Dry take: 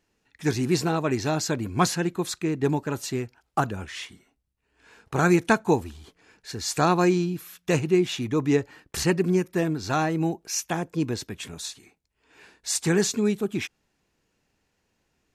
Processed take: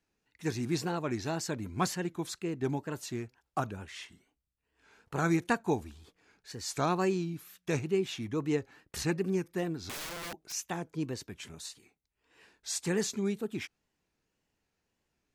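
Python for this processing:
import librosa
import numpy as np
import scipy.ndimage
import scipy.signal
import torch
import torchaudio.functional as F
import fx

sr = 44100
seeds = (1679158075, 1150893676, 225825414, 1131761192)

y = fx.overflow_wrap(x, sr, gain_db=26.5, at=(9.89, 10.52))
y = fx.wow_flutter(y, sr, seeds[0], rate_hz=2.1, depth_cents=110.0)
y = y * 10.0 ** (-8.5 / 20.0)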